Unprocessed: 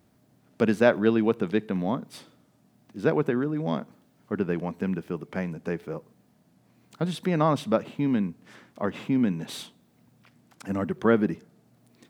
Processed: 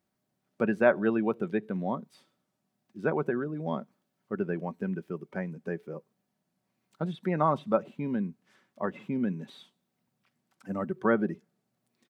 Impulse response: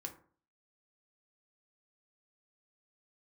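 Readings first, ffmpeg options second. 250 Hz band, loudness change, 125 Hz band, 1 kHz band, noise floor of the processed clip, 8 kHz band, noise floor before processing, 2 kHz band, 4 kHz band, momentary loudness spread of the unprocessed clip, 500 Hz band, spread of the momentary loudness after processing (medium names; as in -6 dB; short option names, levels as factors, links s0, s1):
-5.0 dB, -4.0 dB, -5.5 dB, -1.0 dB, -81 dBFS, under -15 dB, -64 dBFS, -2.0 dB, -12.5 dB, 13 LU, -3.5 dB, 12 LU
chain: -filter_complex "[0:a]afftdn=nr=13:nf=-34,acrossover=split=2600[s0][s1];[s1]acompressor=threshold=0.00158:ratio=4:attack=1:release=60[s2];[s0][s2]amix=inputs=2:normalize=0,lowshelf=f=470:g=-7.5,aecho=1:1:5.3:0.32"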